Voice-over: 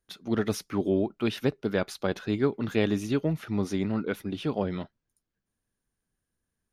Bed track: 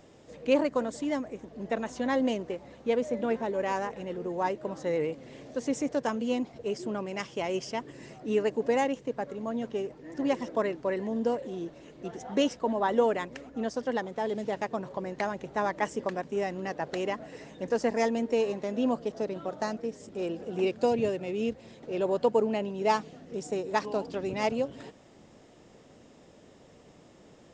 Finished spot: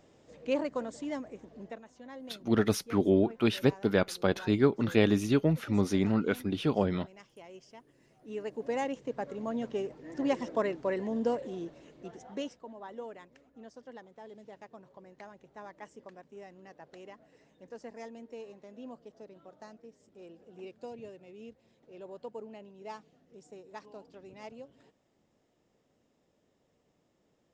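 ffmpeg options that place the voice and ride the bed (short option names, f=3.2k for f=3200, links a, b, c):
-filter_complex "[0:a]adelay=2200,volume=1dB[a];[1:a]volume=11.5dB,afade=t=out:st=1.57:d=0.23:silence=0.223872,afade=t=in:st=8.12:d=1.26:silence=0.133352,afade=t=out:st=11.39:d=1.27:silence=0.149624[b];[a][b]amix=inputs=2:normalize=0"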